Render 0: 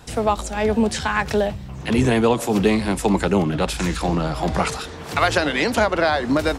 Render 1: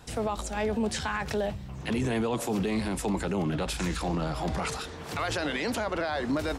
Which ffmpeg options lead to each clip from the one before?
ffmpeg -i in.wav -af "alimiter=limit=-15dB:level=0:latency=1:release=17,volume=-6dB" out.wav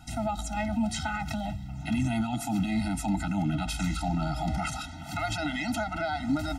ffmpeg -i in.wav -af "afftfilt=real='re*eq(mod(floor(b*sr/1024/310),2),0)':imag='im*eq(mod(floor(b*sr/1024/310),2),0)':win_size=1024:overlap=0.75,volume=2dB" out.wav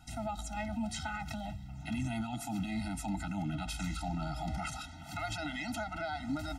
ffmpeg -i in.wav -af "equalizer=frequency=280:width=0.51:gain=-2.5,volume=-6dB" out.wav

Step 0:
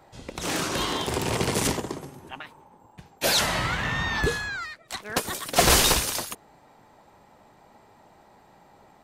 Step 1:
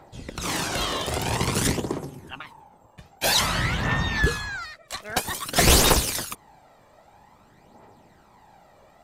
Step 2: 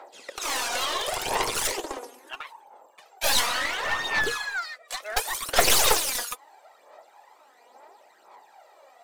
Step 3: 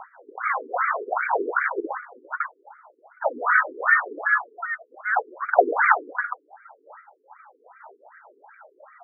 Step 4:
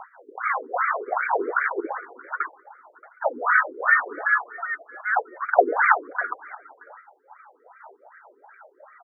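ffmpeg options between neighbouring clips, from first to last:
ffmpeg -i in.wav -af "aphaser=in_gain=1:out_gain=1:delay=1.8:decay=0.49:speed=0.51:type=triangular" out.wav
ffmpeg -i in.wav -af "highpass=frequency=440:width=0.5412,highpass=frequency=440:width=1.3066,aeval=exprs='clip(val(0),-1,0.0376)':channel_layout=same,aphaser=in_gain=1:out_gain=1:delay=4.2:decay=0.53:speed=0.72:type=sinusoidal" out.wav
ffmpeg -i in.wav -af "equalizer=frequency=1500:width_type=o:width=0.45:gain=9,afftfilt=real='re*between(b*sr/1024,320*pow(1700/320,0.5+0.5*sin(2*PI*2.6*pts/sr))/1.41,320*pow(1700/320,0.5+0.5*sin(2*PI*2.6*pts/sr))*1.41)':imag='im*between(b*sr/1024,320*pow(1700/320,0.5+0.5*sin(2*PI*2.6*pts/sr))/1.41,320*pow(1700/320,0.5+0.5*sin(2*PI*2.6*pts/sr))*1.41)':win_size=1024:overlap=0.75,volume=8dB" out.wav
ffmpeg -i in.wav -af "aecho=1:1:627:0.0708" out.wav

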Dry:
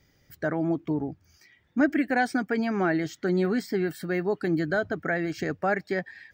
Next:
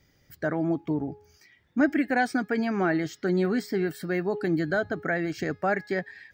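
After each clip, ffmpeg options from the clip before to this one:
ffmpeg -i in.wav -af "bandreject=frequency=418.5:width_type=h:width=4,bandreject=frequency=837:width_type=h:width=4,bandreject=frequency=1255.5:width_type=h:width=4,bandreject=frequency=1674:width_type=h:width=4,bandreject=frequency=2092.5:width_type=h:width=4,bandreject=frequency=2511:width_type=h:width=4,bandreject=frequency=2929.5:width_type=h:width=4,bandreject=frequency=3348:width_type=h:width=4,bandreject=frequency=3766.5:width_type=h:width=4,bandreject=frequency=4185:width_type=h:width=4,bandreject=frequency=4603.5:width_type=h:width=4,bandreject=frequency=5022:width_type=h:width=4,bandreject=frequency=5440.5:width_type=h:width=4,bandreject=frequency=5859:width_type=h:width=4" out.wav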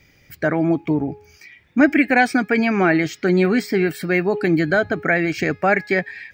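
ffmpeg -i in.wav -af "equalizer=frequency=2400:width_type=o:width=0.36:gain=12.5,volume=8dB" out.wav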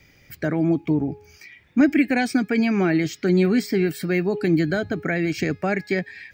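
ffmpeg -i in.wav -filter_complex "[0:a]acrossover=split=400|3000[link_01][link_02][link_03];[link_02]acompressor=threshold=-45dB:ratio=1.5[link_04];[link_01][link_04][link_03]amix=inputs=3:normalize=0" out.wav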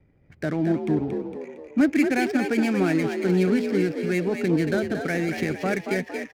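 ffmpeg -i in.wav -filter_complex "[0:a]adynamicsmooth=sensitivity=7.5:basefreq=670,asplit=7[link_01][link_02][link_03][link_04][link_05][link_06][link_07];[link_02]adelay=229,afreqshift=55,volume=-6.5dB[link_08];[link_03]adelay=458,afreqshift=110,volume=-13.1dB[link_09];[link_04]adelay=687,afreqshift=165,volume=-19.6dB[link_10];[link_05]adelay=916,afreqshift=220,volume=-26.2dB[link_11];[link_06]adelay=1145,afreqshift=275,volume=-32.7dB[link_12];[link_07]adelay=1374,afreqshift=330,volume=-39.3dB[link_13];[link_01][link_08][link_09][link_10][link_11][link_12][link_13]amix=inputs=7:normalize=0,volume=-3dB" out.wav

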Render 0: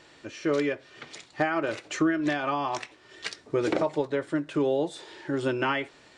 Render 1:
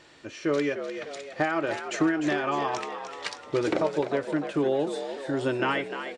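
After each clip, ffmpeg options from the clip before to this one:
ffmpeg -i in.wav -filter_complex "[0:a]asplit=7[link_01][link_02][link_03][link_04][link_05][link_06][link_07];[link_02]adelay=301,afreqshift=64,volume=-9dB[link_08];[link_03]adelay=602,afreqshift=128,volume=-14.8dB[link_09];[link_04]adelay=903,afreqshift=192,volume=-20.7dB[link_10];[link_05]adelay=1204,afreqshift=256,volume=-26.5dB[link_11];[link_06]adelay=1505,afreqshift=320,volume=-32.4dB[link_12];[link_07]adelay=1806,afreqshift=384,volume=-38.2dB[link_13];[link_01][link_08][link_09][link_10][link_11][link_12][link_13]amix=inputs=7:normalize=0" out.wav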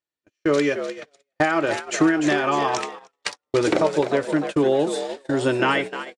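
ffmpeg -i in.wav -af "agate=range=-47dB:threshold=-33dB:ratio=16:detection=peak,highshelf=frequency=8100:gain=12,volume=6dB" out.wav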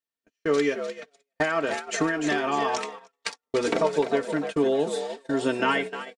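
ffmpeg -i in.wav -af "aecho=1:1:4.4:0.64,volume=-5dB" out.wav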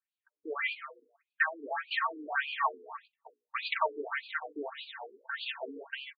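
ffmpeg -i in.wav -af "lowshelf=frequency=690:width_type=q:width=1.5:gain=-12,bandreject=frequency=60:width_type=h:width=6,bandreject=frequency=120:width_type=h:width=6,bandreject=frequency=180:width_type=h:width=6,bandreject=frequency=240:width_type=h:width=6,bandreject=frequency=300:width_type=h:width=6,bandreject=frequency=360:width_type=h:width=6,bandreject=frequency=420:width_type=h:width=6,bandreject=frequency=480:width_type=h:width=6,bandreject=frequency=540:width_type=h:width=6,bandreject=frequency=600:width_type=h:width=6,afftfilt=real='re*between(b*sr/1024,310*pow(3400/310,0.5+0.5*sin(2*PI*1.7*pts/sr))/1.41,310*pow(3400/310,0.5+0.5*sin(2*PI*1.7*pts/sr))*1.41)':imag='im*between(b*sr/1024,310*pow(3400/310,0.5+0.5*sin(2*PI*1.7*pts/sr))/1.41,310*pow(3400/310,0.5+0.5*sin(2*PI*1.7*pts/sr))*1.41)':win_size=1024:overlap=0.75,volume=1.5dB" out.wav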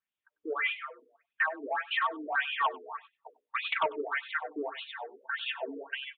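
ffmpeg -i in.wav -af "aeval=exprs='0.178*sin(PI/2*2*val(0)/0.178)':channel_layout=same,aecho=1:1:97:0.0891,aresample=8000,aresample=44100,volume=-6.5dB" out.wav

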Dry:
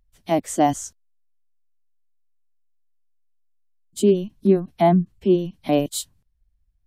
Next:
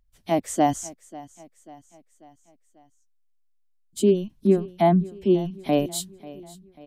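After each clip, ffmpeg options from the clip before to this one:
ffmpeg -i in.wav -af "aecho=1:1:541|1082|1623|2164:0.106|0.054|0.0276|0.0141,volume=-2dB" out.wav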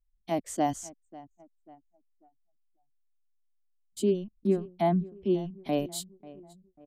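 ffmpeg -i in.wav -af "anlmdn=0.1,equalizer=frequency=4600:width=6.5:gain=3.5,volume=-7dB" out.wav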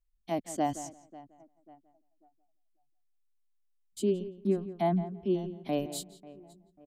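ffmpeg -i in.wav -filter_complex "[0:a]asplit=2[link_01][link_02];[link_02]adelay=170,lowpass=frequency=2800:poles=1,volume=-13.5dB,asplit=2[link_03][link_04];[link_04]adelay=170,lowpass=frequency=2800:poles=1,volume=0.16[link_05];[link_01][link_03][link_05]amix=inputs=3:normalize=0,volume=-2.5dB" out.wav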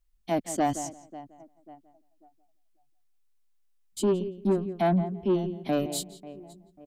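ffmpeg -i in.wav -af "asoftclip=type=tanh:threshold=-24dB,volume=6.5dB" out.wav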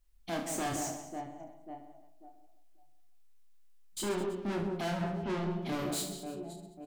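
ffmpeg -i in.wav -af "asoftclip=type=tanh:threshold=-36dB,aecho=1:1:30|72|130.8|213.1|328.4:0.631|0.398|0.251|0.158|0.1,volume=2dB" out.wav

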